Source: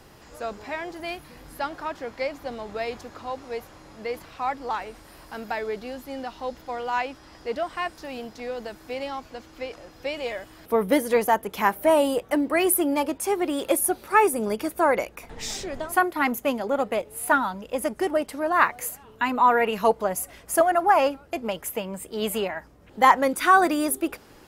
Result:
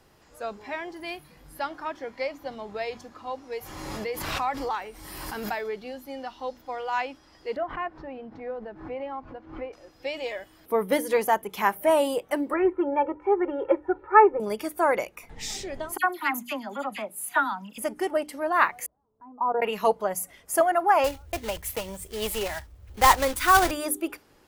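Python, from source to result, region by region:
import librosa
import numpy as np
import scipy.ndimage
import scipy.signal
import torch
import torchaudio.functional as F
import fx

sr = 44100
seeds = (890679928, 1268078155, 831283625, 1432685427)

y = fx.chain(x, sr, fx.high_shelf(hz=12000.0, db=9.0),
    fx.pre_swell(db_per_s=30.0), at=(3.52, 5.69))
y = fx.chain(y, sr, fx.lowpass(hz=1600.0, slope=12),
    fx.pre_swell(db_per_s=91.0), at=(7.56, 9.73))
y = fx.chain(y, sr, fx.lowpass(hz=1800.0, slope=24),
    fx.comb(ms=2.2, depth=0.93), at=(12.53, 14.4))
y = fx.chain(y, sr, fx.highpass(hz=150.0, slope=24),
    fx.peak_eq(hz=470.0, db=-14.5, octaves=0.61),
    fx.dispersion(late='lows', ms=69.0, hz=2300.0), at=(15.97, 17.78))
y = fx.chain(y, sr, fx.lowpass(hz=1000.0, slope=24),
    fx.level_steps(step_db=22), at=(18.86, 19.62))
y = fx.chain(y, sr, fx.block_float(bits=3),
    fx.low_shelf_res(hz=110.0, db=12.5, q=1.5), at=(21.04, 23.73))
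y = fx.hum_notches(y, sr, base_hz=60, count=5)
y = fx.dynamic_eq(y, sr, hz=240.0, q=1.6, threshold_db=-38.0, ratio=4.0, max_db=-4)
y = fx.noise_reduce_blind(y, sr, reduce_db=7)
y = F.gain(torch.from_numpy(y), -1.5).numpy()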